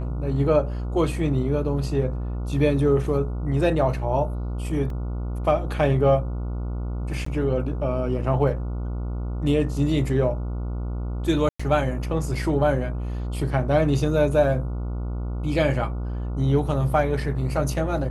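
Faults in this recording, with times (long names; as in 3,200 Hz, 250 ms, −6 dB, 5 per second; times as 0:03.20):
mains buzz 60 Hz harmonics 24 −28 dBFS
0:04.90: drop-out 2.2 ms
0:07.25–0:07.26: drop-out 14 ms
0:11.49–0:11.60: drop-out 105 ms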